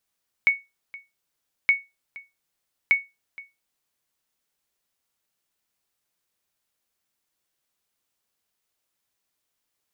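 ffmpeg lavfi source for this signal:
-f lavfi -i "aevalsrc='0.316*(sin(2*PI*2220*mod(t,1.22))*exp(-6.91*mod(t,1.22)/0.22)+0.0841*sin(2*PI*2220*max(mod(t,1.22)-0.47,0))*exp(-6.91*max(mod(t,1.22)-0.47,0)/0.22))':d=3.66:s=44100"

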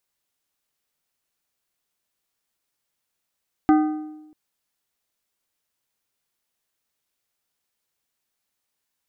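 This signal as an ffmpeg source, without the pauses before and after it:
-f lavfi -i "aevalsrc='0.282*pow(10,-3*t/1.01)*sin(2*PI*307*t)+0.126*pow(10,-3*t/0.767)*sin(2*PI*767.5*t)+0.0562*pow(10,-3*t/0.666)*sin(2*PI*1228*t)+0.0251*pow(10,-3*t/0.623)*sin(2*PI*1535*t)+0.0112*pow(10,-3*t/0.576)*sin(2*PI*1995.5*t)':d=0.64:s=44100"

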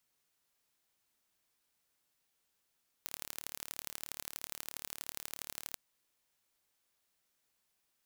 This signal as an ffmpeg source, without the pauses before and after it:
-f lavfi -i "aevalsrc='0.251*eq(mod(n,1195),0)*(0.5+0.5*eq(mod(n,3585),0))':d=2.69:s=44100"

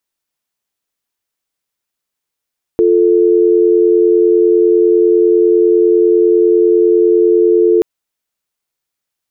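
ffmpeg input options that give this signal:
-f lavfi -i "aevalsrc='0.335*(sin(2*PI*350*t)+sin(2*PI*440*t))':d=5.03:s=44100"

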